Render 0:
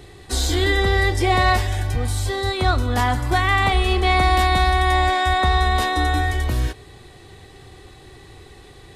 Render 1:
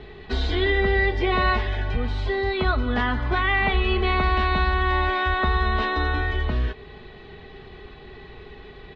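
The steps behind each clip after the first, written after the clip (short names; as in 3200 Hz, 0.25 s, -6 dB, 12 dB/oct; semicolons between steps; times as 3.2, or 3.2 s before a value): inverse Chebyshev low-pass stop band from 12000 Hz, stop band 70 dB; comb 4.7 ms, depth 61%; in parallel at +3 dB: compressor, threshold -25 dBFS, peak gain reduction 11.5 dB; on the sum: gain -6.5 dB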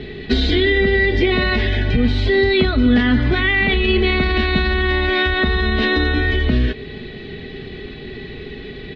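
limiter -17.5 dBFS, peak gain reduction 7.5 dB; graphic EQ 125/250/500/1000/2000/4000 Hz +5/+10/+3/-11/+6/+6 dB; gain +6 dB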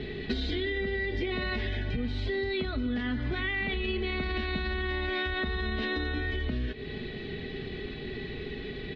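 compressor 6:1, threshold -23 dBFS, peak gain reduction 12 dB; gain -5.5 dB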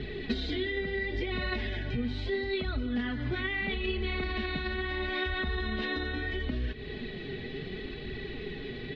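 flange 0.74 Hz, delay 0.5 ms, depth 8.4 ms, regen +48%; gain +3 dB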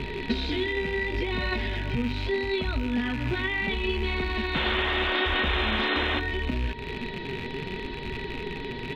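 rattling part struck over -40 dBFS, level -30 dBFS; painted sound noise, 4.54–6.2, 220–3700 Hz -33 dBFS; whine 940 Hz -47 dBFS; gain +4 dB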